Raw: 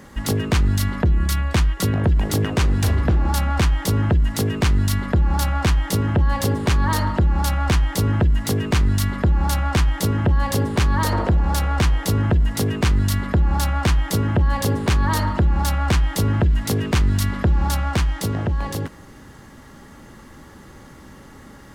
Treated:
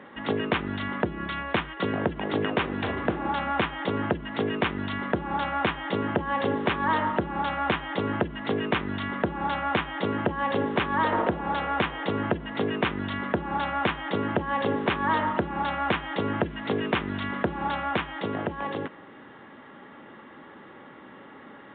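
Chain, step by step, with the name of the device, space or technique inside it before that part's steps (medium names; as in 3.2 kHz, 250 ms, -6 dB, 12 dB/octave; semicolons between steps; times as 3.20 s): telephone (band-pass 280–3400 Hz; µ-law 64 kbps 8 kHz)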